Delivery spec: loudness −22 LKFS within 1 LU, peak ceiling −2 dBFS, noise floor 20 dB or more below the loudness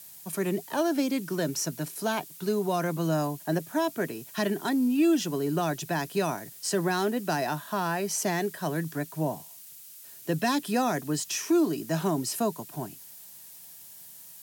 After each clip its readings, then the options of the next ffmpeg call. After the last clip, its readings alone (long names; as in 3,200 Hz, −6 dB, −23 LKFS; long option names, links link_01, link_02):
background noise floor −48 dBFS; target noise floor −49 dBFS; integrated loudness −28.5 LKFS; sample peak −15.0 dBFS; target loudness −22.0 LKFS
→ -af "afftdn=noise_reduction=6:noise_floor=-48"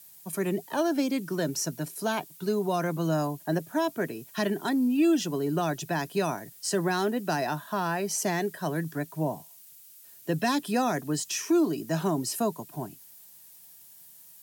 background noise floor −52 dBFS; integrated loudness −29.0 LKFS; sample peak −15.0 dBFS; target loudness −22.0 LKFS
→ -af "volume=7dB"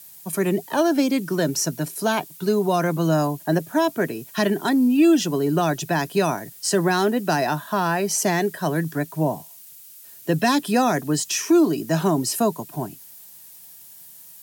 integrated loudness −22.0 LKFS; sample peak −8.0 dBFS; background noise floor −45 dBFS